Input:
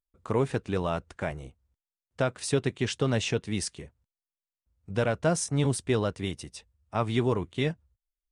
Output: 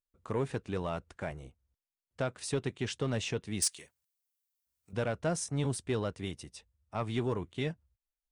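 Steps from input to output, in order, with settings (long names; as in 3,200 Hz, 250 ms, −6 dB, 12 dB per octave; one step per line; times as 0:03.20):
0:03.62–0:04.93: spectral tilt +4.5 dB per octave
soft clipping −15.5 dBFS, distortion −20 dB
level −5.5 dB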